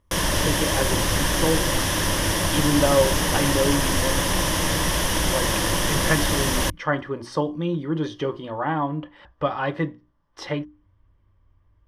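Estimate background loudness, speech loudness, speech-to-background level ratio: -22.0 LUFS, -26.5 LUFS, -4.5 dB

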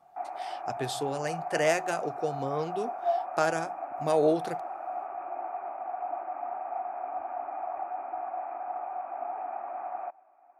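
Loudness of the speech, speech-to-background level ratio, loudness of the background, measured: -30.5 LUFS, 5.5 dB, -36.0 LUFS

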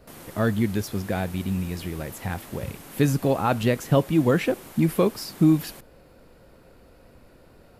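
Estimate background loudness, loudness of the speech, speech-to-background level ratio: -43.5 LUFS, -24.5 LUFS, 19.0 dB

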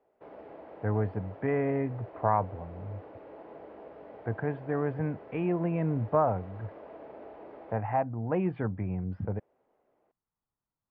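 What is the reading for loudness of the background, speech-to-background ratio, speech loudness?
-48.0 LUFS, 16.5 dB, -31.5 LUFS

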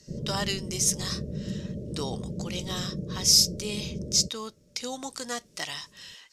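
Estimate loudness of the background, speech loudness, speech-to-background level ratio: -36.0 LUFS, -27.5 LUFS, 8.5 dB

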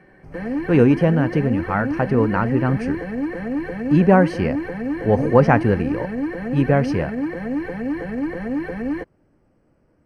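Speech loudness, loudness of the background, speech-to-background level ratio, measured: -19.5 LUFS, -26.0 LUFS, 6.5 dB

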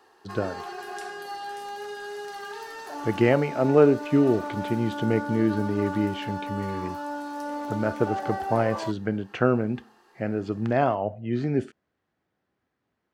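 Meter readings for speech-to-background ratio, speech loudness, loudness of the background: 8.5 dB, -26.0 LUFS, -34.5 LUFS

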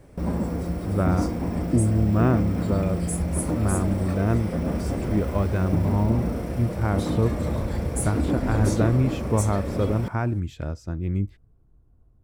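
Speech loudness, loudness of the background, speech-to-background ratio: -26.0 LUFS, -27.5 LUFS, 1.5 dB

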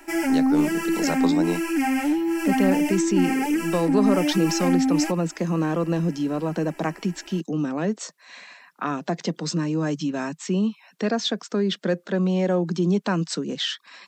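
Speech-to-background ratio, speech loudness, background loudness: -3.0 dB, -26.0 LUFS, -23.0 LUFS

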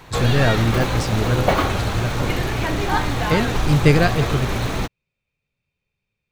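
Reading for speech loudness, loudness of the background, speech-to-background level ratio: -21.5 LUFS, -22.5 LUFS, 1.0 dB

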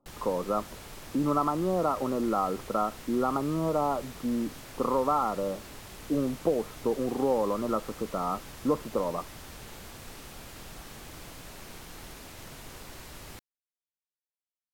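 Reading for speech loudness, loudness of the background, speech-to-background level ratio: -30.0 LUFS, -45.0 LUFS, 15.0 dB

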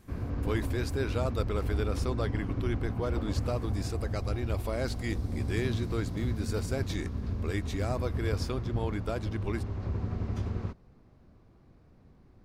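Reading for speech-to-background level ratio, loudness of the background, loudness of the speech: -1.5 dB, -34.5 LUFS, -36.0 LUFS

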